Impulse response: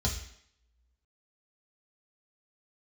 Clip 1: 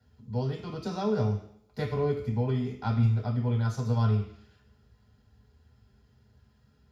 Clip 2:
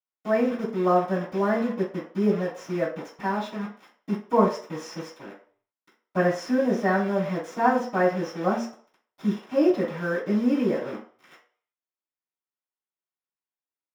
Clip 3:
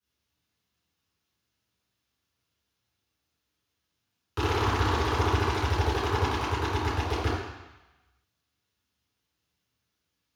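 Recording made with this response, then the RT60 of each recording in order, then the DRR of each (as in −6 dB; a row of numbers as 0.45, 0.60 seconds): 1; 0.70, 0.50, 1.0 seconds; −1.5, −14.5, −15.0 decibels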